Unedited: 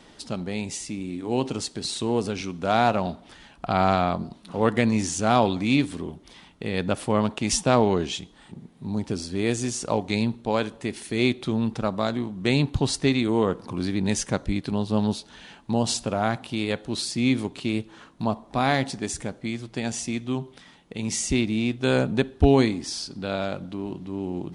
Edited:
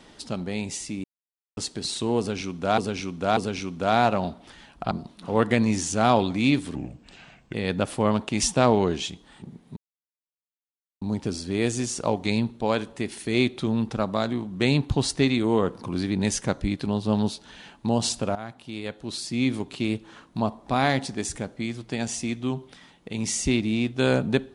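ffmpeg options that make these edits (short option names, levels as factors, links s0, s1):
-filter_complex "[0:a]asplit=10[s0][s1][s2][s3][s4][s5][s6][s7][s8][s9];[s0]atrim=end=1.04,asetpts=PTS-STARTPTS,afade=t=out:st=1.036:d=0.004:c=hsin[s10];[s1]atrim=start=1.04:end=1.57,asetpts=PTS-STARTPTS,volume=0[s11];[s2]atrim=start=1.57:end=2.782,asetpts=PTS-STARTPTS,afade=t=in:d=0.004:c=hsin[s12];[s3]atrim=start=2.188:end=2.782[s13];[s4]atrim=start=2.188:end=3.732[s14];[s5]atrim=start=4.168:end=6.014[s15];[s6]atrim=start=6.01:end=6.63,asetpts=PTS-STARTPTS,asetrate=34839,aresample=44100,atrim=end_sample=34610,asetpts=PTS-STARTPTS[s16];[s7]atrim=start=6.626:end=8.86,asetpts=PTS-STARTPTS,afade=t=out:st=2.23:d=0.004:c=hsin,apad=pad_dur=1.25[s17];[s8]atrim=start=8.86:end=16.2,asetpts=PTS-STARTPTS,afade=t=in:d=0.004:c=hsin,afade=t=out:st=7.336:d=0.004:c=hsin:silence=0.188365[s18];[s9]atrim=start=16.2,asetpts=PTS-STARTPTS,afade=t=in:d=1.49:silence=0.188365[s19];[s10][s11][s12]concat=n=3:v=0:a=1[s20];[s20][s13]acrossfade=d=0.004:c1=hsin:c2=hsin[s21];[s21][s14]acrossfade=d=0.004:c1=hsin:c2=hsin[s22];[s22][s15]acrossfade=d=0.004:c1=hsin:c2=hsin[s23];[s23][s16]acrossfade=d=0.004:c1=hsin:c2=hsin[s24];[s17][s18][s19]concat=n=3:v=0:a=1[s25];[s24][s25]acrossfade=d=0.004:c1=hsin:c2=hsin"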